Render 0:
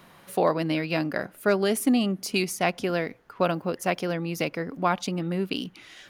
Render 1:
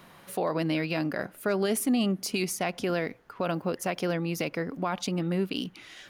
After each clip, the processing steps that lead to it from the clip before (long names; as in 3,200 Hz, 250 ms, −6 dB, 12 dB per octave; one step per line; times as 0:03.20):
brickwall limiter −18.5 dBFS, peak gain reduction 8 dB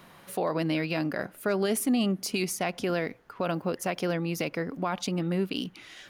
no processing that can be heard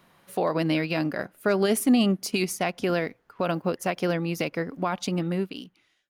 fade-out on the ending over 0.93 s
expander for the loud parts 1.5 to 1, over −48 dBFS
level +6 dB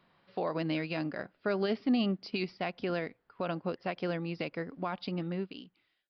downsampling to 11,025 Hz
level −8 dB